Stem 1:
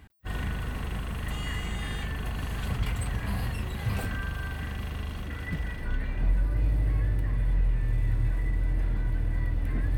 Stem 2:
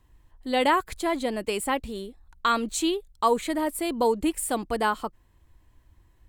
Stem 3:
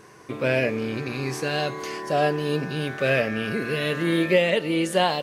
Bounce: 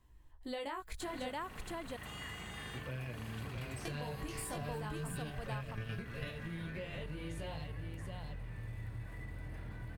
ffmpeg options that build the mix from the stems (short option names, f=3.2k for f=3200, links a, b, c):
-filter_complex "[0:a]highpass=220,adelay=750,volume=-7.5dB[a];[1:a]volume=-2.5dB,asplit=3[b][c][d];[b]atrim=end=1.29,asetpts=PTS-STARTPTS,afade=t=out:st=1.286:d=0.004:c=hsin[e];[c]atrim=start=1.29:end=3.85,asetpts=PTS-STARTPTS,volume=0[f];[d]atrim=start=3.85,asetpts=PTS-STARTPTS,afade=t=in:d=0.004:c=hsin[g];[e][f][g]concat=n=3:v=0:a=1,asplit=3[h][i][j];[i]volume=-9.5dB[k];[2:a]acrossover=split=210[l][m];[m]acompressor=threshold=-39dB:ratio=1.5[n];[l][n]amix=inputs=2:normalize=0,adelay=2450,volume=2dB,asplit=2[o][p];[p]volume=-22dB[q];[j]apad=whole_len=338415[r];[o][r]sidechaingate=range=-12dB:threshold=-57dB:ratio=16:detection=peak[s];[h][s]amix=inputs=2:normalize=0,flanger=delay=16:depth=4.5:speed=0.35,acompressor=threshold=-32dB:ratio=6,volume=0dB[t];[k][q]amix=inputs=2:normalize=0,aecho=0:1:677:1[u];[a][t][u]amix=inputs=3:normalize=0,asubboost=boost=6:cutoff=110,acompressor=threshold=-40dB:ratio=3"